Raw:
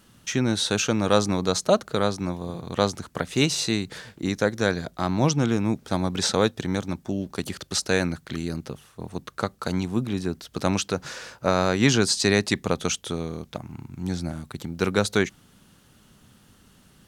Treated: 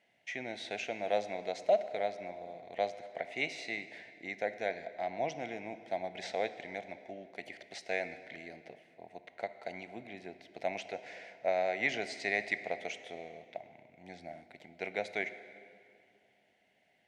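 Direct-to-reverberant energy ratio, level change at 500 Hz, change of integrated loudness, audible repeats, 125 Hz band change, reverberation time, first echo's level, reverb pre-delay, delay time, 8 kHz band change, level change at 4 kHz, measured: 11.0 dB, -10.0 dB, -12.0 dB, no echo, -28.5 dB, 2.4 s, no echo, 15 ms, no echo, -25.0 dB, -18.0 dB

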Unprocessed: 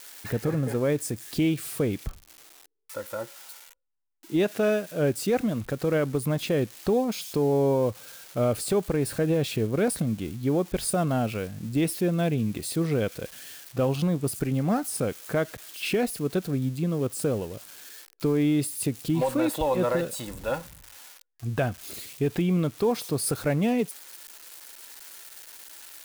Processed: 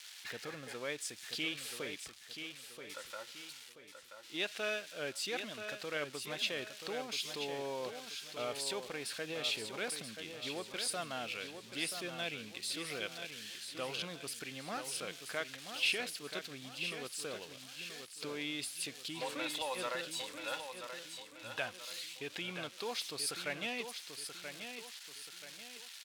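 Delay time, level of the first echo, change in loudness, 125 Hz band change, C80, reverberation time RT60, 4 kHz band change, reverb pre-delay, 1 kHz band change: 981 ms, -8.0 dB, -13.0 dB, -26.5 dB, no reverb, no reverb, +1.5 dB, no reverb, -10.5 dB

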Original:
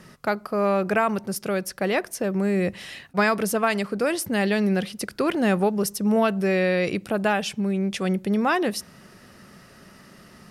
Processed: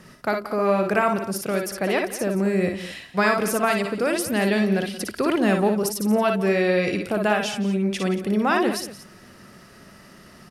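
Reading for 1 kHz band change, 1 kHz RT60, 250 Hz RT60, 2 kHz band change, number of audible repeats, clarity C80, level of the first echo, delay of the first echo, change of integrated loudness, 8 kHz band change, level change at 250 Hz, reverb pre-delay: +1.5 dB, no reverb, no reverb, +1.5 dB, 3, no reverb, -4.0 dB, 57 ms, +1.5 dB, +1.5 dB, +1.0 dB, no reverb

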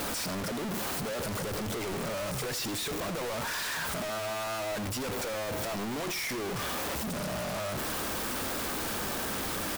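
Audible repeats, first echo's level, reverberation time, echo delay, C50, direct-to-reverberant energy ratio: 1, -14.5 dB, no reverb, 85 ms, no reverb, no reverb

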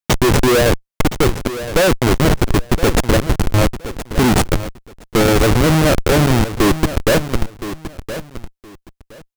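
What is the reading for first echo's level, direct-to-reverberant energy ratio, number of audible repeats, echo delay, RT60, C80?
-12.5 dB, no reverb, 2, 1018 ms, no reverb, no reverb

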